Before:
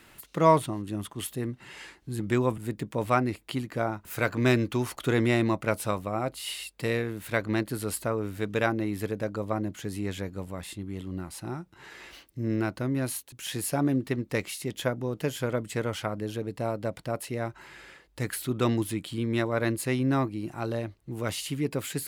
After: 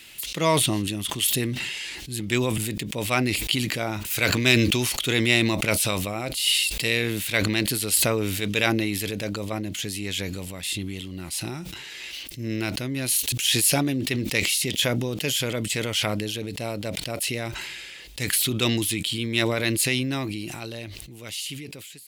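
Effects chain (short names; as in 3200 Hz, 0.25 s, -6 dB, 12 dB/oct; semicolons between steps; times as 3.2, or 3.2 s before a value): ending faded out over 2.43 s; resonant high shelf 1900 Hz +12.5 dB, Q 1.5; sustainer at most 24 dB/s; gain -1 dB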